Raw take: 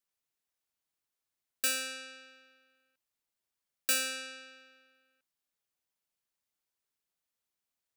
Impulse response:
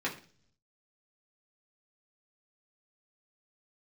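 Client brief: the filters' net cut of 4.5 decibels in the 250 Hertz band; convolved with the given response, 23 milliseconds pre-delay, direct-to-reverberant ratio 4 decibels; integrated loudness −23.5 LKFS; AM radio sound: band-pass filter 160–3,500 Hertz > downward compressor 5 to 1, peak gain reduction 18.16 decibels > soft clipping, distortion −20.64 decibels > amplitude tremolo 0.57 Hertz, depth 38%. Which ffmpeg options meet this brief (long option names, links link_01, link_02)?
-filter_complex "[0:a]equalizer=frequency=250:width_type=o:gain=-4,asplit=2[link_01][link_02];[1:a]atrim=start_sample=2205,adelay=23[link_03];[link_02][link_03]afir=irnorm=-1:irlink=0,volume=-10.5dB[link_04];[link_01][link_04]amix=inputs=2:normalize=0,highpass=160,lowpass=3500,acompressor=threshold=-48dB:ratio=5,asoftclip=threshold=-36.5dB,tremolo=f=0.57:d=0.38,volume=30dB"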